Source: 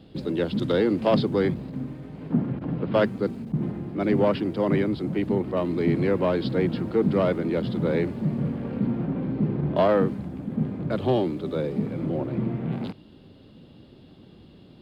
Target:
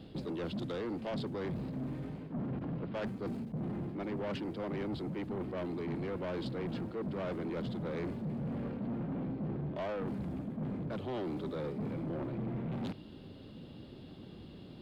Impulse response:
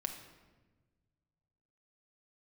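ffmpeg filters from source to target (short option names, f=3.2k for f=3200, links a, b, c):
-af "areverse,acompressor=threshold=-30dB:ratio=6,areverse,asoftclip=type=tanh:threshold=-33dB"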